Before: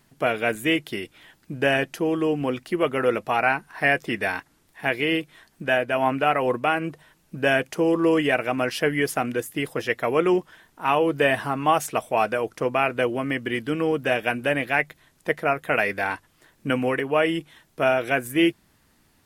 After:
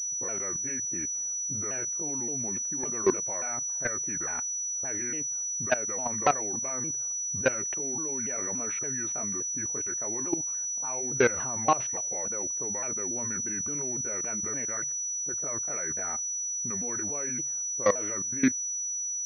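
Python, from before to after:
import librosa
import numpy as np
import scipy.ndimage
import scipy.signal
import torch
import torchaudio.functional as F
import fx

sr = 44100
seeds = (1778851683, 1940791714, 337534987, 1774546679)

y = fx.pitch_ramps(x, sr, semitones=-5.5, every_ms=285)
y = fx.env_lowpass(y, sr, base_hz=2000.0, full_db=-17.0)
y = fx.level_steps(y, sr, step_db=19)
y = fx.env_lowpass(y, sr, base_hz=500.0, full_db=-28.5)
y = fx.pwm(y, sr, carrier_hz=5900.0)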